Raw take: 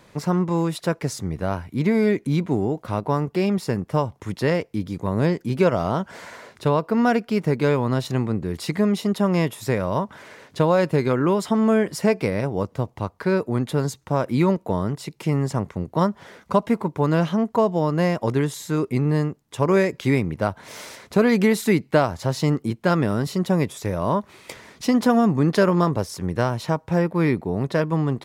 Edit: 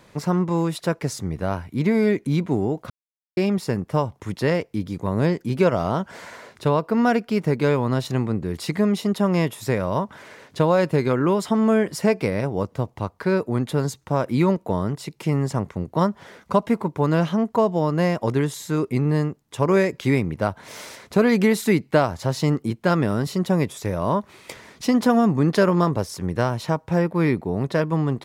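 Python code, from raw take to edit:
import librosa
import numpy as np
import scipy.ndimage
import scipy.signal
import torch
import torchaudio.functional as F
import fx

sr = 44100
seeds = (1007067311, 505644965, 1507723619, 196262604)

y = fx.edit(x, sr, fx.silence(start_s=2.9, length_s=0.47), tone=tone)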